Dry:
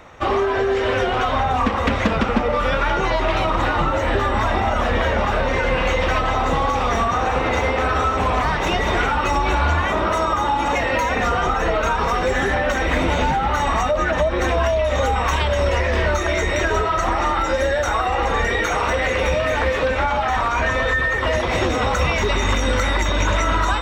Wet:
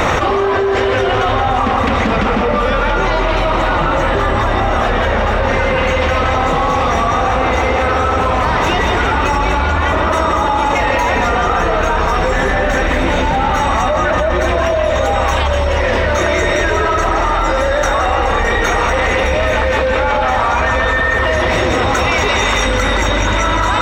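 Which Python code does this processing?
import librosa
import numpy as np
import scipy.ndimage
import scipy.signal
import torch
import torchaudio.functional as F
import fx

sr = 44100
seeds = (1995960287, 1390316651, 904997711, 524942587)

y = fx.low_shelf(x, sr, hz=400.0, db=-11.0, at=(21.94, 22.66))
y = fx.echo_filtered(y, sr, ms=169, feedback_pct=66, hz=5000.0, wet_db=-5.5)
y = fx.env_flatten(y, sr, amount_pct=100)
y = y * 10.0 ** (-1.0 / 20.0)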